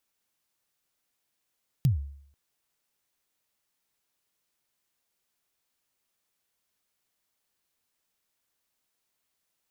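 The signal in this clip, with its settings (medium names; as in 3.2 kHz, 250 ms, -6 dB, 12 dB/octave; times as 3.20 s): kick drum length 0.49 s, from 150 Hz, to 70 Hz, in 127 ms, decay 0.63 s, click on, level -16 dB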